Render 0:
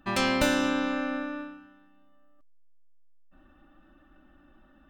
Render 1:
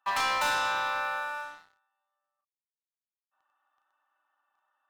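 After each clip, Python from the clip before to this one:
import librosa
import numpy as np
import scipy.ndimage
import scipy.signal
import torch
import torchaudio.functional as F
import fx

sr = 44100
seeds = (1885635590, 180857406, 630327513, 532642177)

y = fx.ladder_highpass(x, sr, hz=850.0, resonance_pct=65)
y = fx.doubler(y, sr, ms=36.0, db=-5)
y = fx.leveller(y, sr, passes=3)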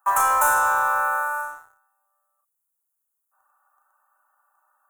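y = fx.curve_eq(x, sr, hz=(120.0, 210.0, 300.0, 440.0, 980.0, 1400.0, 2000.0, 4700.0, 6600.0, 11000.0), db=(0, -20, -6, -1, 3, 5, -12, -23, 4, 14))
y = y * 10.0 ** (6.5 / 20.0)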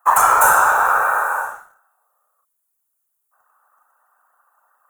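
y = fx.whisperise(x, sr, seeds[0])
y = y * 10.0 ** (5.5 / 20.0)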